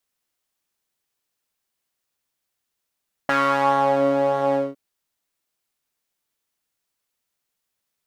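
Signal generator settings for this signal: synth patch with pulse-width modulation C#4, sub -6 dB, noise -12 dB, filter bandpass, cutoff 360 Hz, Q 2.1, filter envelope 2 oct, filter decay 0.72 s, attack 2.9 ms, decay 0.89 s, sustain -5 dB, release 0.21 s, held 1.25 s, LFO 1.6 Hz, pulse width 22%, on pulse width 11%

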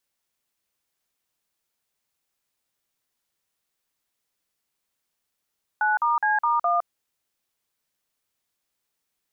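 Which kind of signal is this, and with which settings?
DTMF "9*C*1", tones 162 ms, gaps 46 ms, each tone -21.5 dBFS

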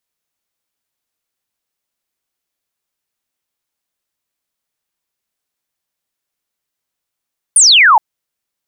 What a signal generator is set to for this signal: laser zap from 10 kHz, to 810 Hz, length 0.42 s sine, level -4 dB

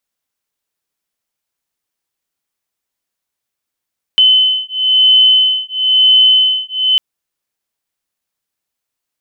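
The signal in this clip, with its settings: beating tones 3.04 kHz, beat 1 Hz, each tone -10.5 dBFS 2.80 s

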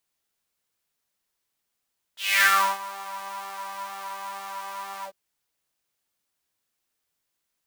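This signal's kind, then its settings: synth patch with pulse-width modulation G3, noise -11 dB, filter highpass, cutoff 420 Hz, Q 5, filter envelope 3 oct, filter decay 0.48 s, attack 238 ms, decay 0.37 s, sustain -20.5 dB, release 0.08 s, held 2.87 s, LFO 2.1 Hz, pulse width 48%, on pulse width 10%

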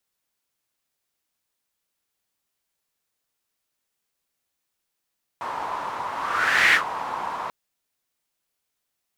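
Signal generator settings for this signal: whoosh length 2.09 s, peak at 1.32 s, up 0.66 s, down 0.12 s, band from 970 Hz, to 2 kHz, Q 4.5, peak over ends 13.5 dB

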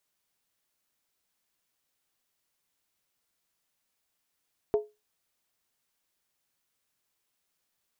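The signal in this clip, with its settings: skin hit, lowest mode 422 Hz, decay 0.23 s, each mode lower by 10.5 dB, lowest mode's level -18 dB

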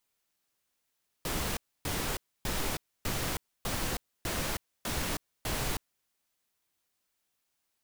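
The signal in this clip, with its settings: noise bursts pink, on 0.32 s, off 0.28 s, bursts 8, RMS -32.5 dBFS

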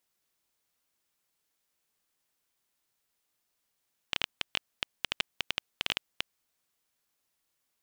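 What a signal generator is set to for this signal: random clicks 9.5 per s -9.5 dBFS 2.18 s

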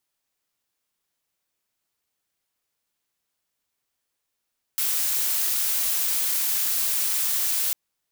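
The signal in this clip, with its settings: noise blue, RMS -24 dBFS 2.95 s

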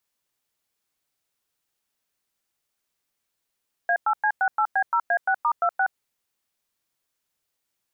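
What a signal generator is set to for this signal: DTMF "A8C68B0A6*26", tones 71 ms, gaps 102 ms, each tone -21 dBFS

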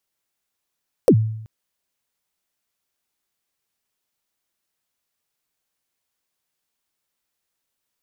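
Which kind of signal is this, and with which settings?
kick drum length 0.38 s, from 580 Hz, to 110 Hz, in 70 ms, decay 0.76 s, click on, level -6.5 dB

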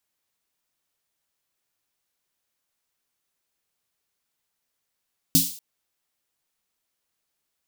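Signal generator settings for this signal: snare drum length 0.24 s, tones 170 Hz, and 270 Hz, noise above 3.6 kHz, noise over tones 2.5 dB, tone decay 0.24 s, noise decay 0.48 s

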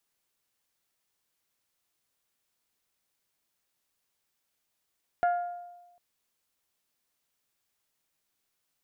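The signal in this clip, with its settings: glass hit bell, length 0.75 s, lowest mode 704 Hz, decay 1.13 s, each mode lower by 10 dB, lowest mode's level -20.5 dB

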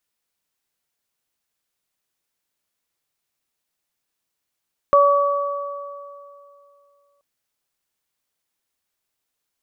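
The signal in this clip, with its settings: additive tone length 2.28 s, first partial 569 Hz, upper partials 0.5 dB, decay 2.63 s, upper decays 2.41 s, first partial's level -12 dB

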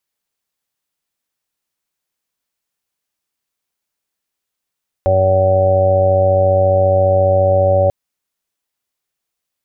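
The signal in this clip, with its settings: steady additive tone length 2.84 s, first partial 94.6 Hz, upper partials -14/-17/-11/-13/5/-14.5/-4 dB, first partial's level -16 dB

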